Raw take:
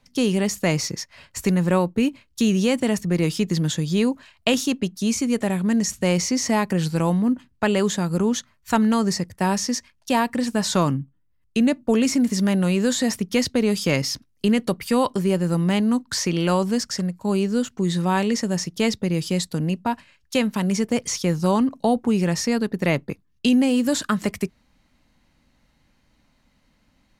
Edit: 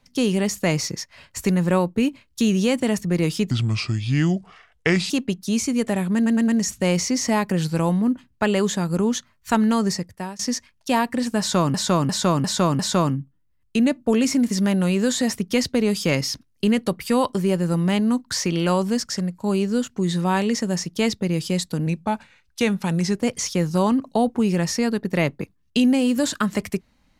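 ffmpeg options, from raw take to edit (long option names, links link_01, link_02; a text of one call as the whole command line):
ffmpeg -i in.wav -filter_complex "[0:a]asplit=13[link_01][link_02][link_03][link_04][link_05][link_06][link_07][link_08][link_09][link_10][link_11][link_12][link_13];[link_01]atrim=end=3.514[link_14];[link_02]atrim=start=3.51:end=4.64,asetpts=PTS-STARTPTS,asetrate=31311,aresample=44100,atrim=end_sample=70187,asetpts=PTS-STARTPTS[link_15];[link_03]atrim=start=4.636:end=5.802[link_16];[link_04]atrim=start=5.688:end=5.802[link_17];[link_05]atrim=start=5.688:end=5.802[link_18];[link_06]atrim=start=5.688:end=9.6,asetpts=PTS-STARTPTS,afade=type=out:start_time=3.412:duration=0.5:silence=0.0668344[link_19];[link_07]atrim=start=9.6:end=10.952,asetpts=PTS-STARTPTS,afade=type=in:duration=0.004:curve=hsin:silence=0.0668344[link_20];[link_08]atrim=start=10.598:end=10.952[link_21];[link_09]atrim=start=10.598:end=10.952[link_22];[link_10]atrim=start=10.598:end=10.952[link_23];[link_11]atrim=start=10.598:end=19.674[link_24];[link_12]atrim=start=19.67:end=20.89,asetpts=PTS-STARTPTS,asetrate=40131,aresample=44100,atrim=end_sample=59123,asetpts=PTS-STARTPTS[link_25];[link_13]atrim=start=20.886[link_26];[link_14][link_15]acrossfade=duration=0.004:curve1=hsin:curve2=hsin[link_27];[link_27][link_16]acrossfade=duration=0.004:curve1=hsin:curve2=hsin[link_28];[link_28][link_17]acrossfade=duration=0.004:curve1=hsin:curve2=hsin[link_29];[link_29][link_18]acrossfade=duration=0.004:curve1=hsin:curve2=hsin[link_30];[link_19][link_20]concat=n=2:v=0:a=1[link_31];[link_30][link_31]acrossfade=duration=0.004:curve1=hsin:curve2=hsin[link_32];[link_32][link_21]acrossfade=duration=0.004:curve1=hsin:curve2=hsin[link_33];[link_33][link_22]acrossfade=duration=0.004:curve1=hsin:curve2=hsin[link_34];[link_34][link_23]acrossfade=duration=0.004:curve1=hsin:curve2=hsin[link_35];[link_35][link_24]acrossfade=duration=0.004:curve1=hsin:curve2=hsin[link_36];[link_36][link_25]acrossfade=duration=0.004:curve1=hsin:curve2=hsin[link_37];[link_37][link_26]acrossfade=duration=0.004:curve1=hsin:curve2=hsin" out.wav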